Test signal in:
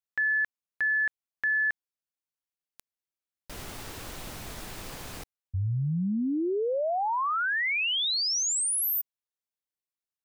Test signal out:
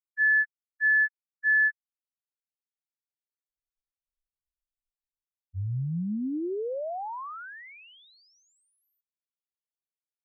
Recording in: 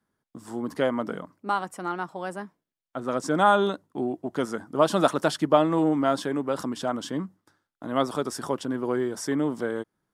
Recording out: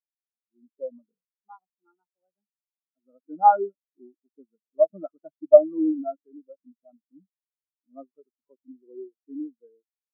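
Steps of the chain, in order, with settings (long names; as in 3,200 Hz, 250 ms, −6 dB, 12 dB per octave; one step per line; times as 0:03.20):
every bin expanded away from the loudest bin 4 to 1
level +3.5 dB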